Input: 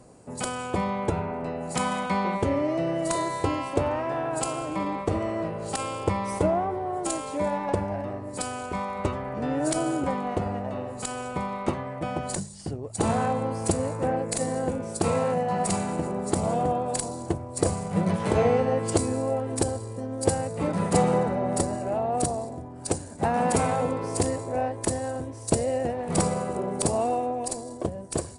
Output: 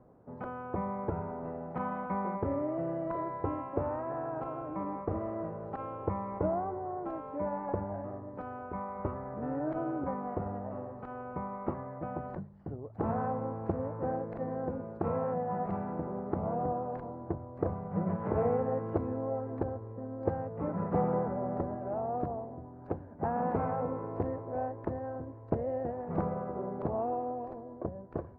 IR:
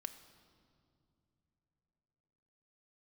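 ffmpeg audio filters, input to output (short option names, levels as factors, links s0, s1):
-af "lowpass=f=1500:w=0.5412,lowpass=f=1500:w=1.3066,volume=0.422"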